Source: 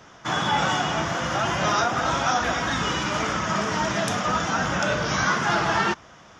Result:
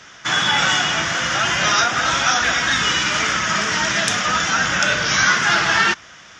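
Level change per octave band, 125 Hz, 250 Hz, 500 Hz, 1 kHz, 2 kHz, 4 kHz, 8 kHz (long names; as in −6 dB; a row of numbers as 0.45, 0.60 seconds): −1.0, −1.0, −1.0, +2.5, +9.5, +10.5, +10.5 decibels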